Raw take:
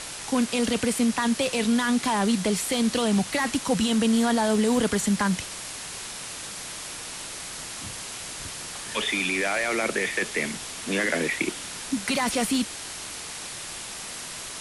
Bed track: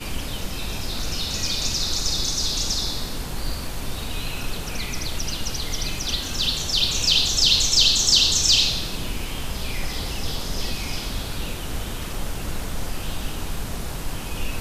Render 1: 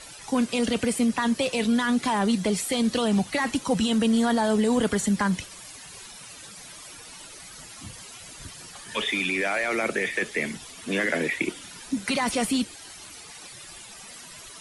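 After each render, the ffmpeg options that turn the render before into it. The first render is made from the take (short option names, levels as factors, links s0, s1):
-af "afftdn=nr=13:nf=-37"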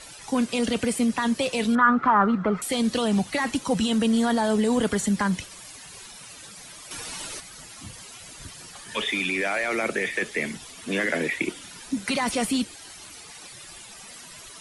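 -filter_complex "[0:a]asettb=1/sr,asplit=3[s0][s1][s2];[s0]atrim=end=1.754[s3];[s1]atrim=start=1.75:end=2.62,asetpts=PTS-STARTPTS,afade=t=in:d=0.004:c=qsin,afade=t=out:st=0.866:d=0.004:c=qsin,lowpass=f=1300:t=q:w=11[s4];[s2]atrim=start=2.616[s5];[s3][s4]acrossfade=d=0.004:c1=hsin:c2=qsin[s6];[s6][s5]acrossfade=d=0.004:c1=qsin:c2=hsin,asplit=3[s7][s8][s9];[s7]atrim=end=6.912[s10];[s8]atrim=start=6.908:end=7.402,asetpts=PTS-STARTPTS,volume=2.51[s11];[s9]atrim=start=7.398[s12];[s10][s11]acrossfade=d=0.004:c1=hsin:c2=hsin[s13];[s13][s12]acrossfade=d=0.004:c1=hsin:c2=hsin"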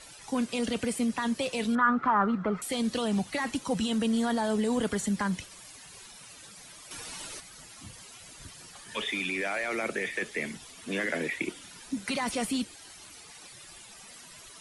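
-af "volume=0.531"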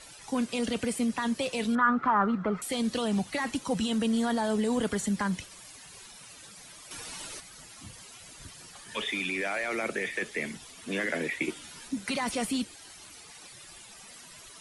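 -filter_complex "[0:a]asettb=1/sr,asplit=3[s0][s1][s2];[s0]atrim=end=11.404[s3];[s1]atrim=start=11.4:end=11.88,asetpts=PTS-STARTPTS,afade=t=in:d=0.004:c=qsin,afade=t=out:st=0.476:d=0.004:c=qsin,asplit=2[s4][s5];[s5]adelay=13,volume=0.708[s6];[s4][s6]amix=inputs=2:normalize=0,atrim=end_sample=21168[s7];[s2]atrim=start=11.876[s8];[s3][s7]acrossfade=d=0.004:c1=hsin:c2=qsin[s9];[s9][s8]acrossfade=d=0.004:c1=qsin:c2=hsin"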